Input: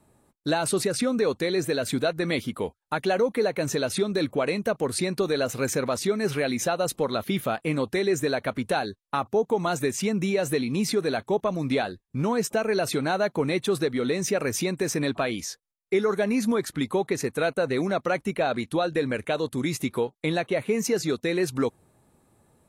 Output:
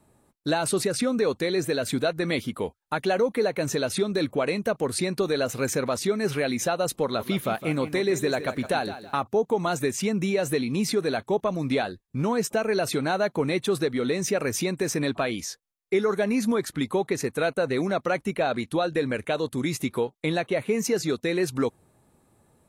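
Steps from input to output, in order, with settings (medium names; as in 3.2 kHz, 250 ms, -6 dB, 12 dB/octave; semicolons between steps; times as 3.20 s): 7.03–9.20 s: bit-crushed delay 161 ms, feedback 35%, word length 9-bit, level -12 dB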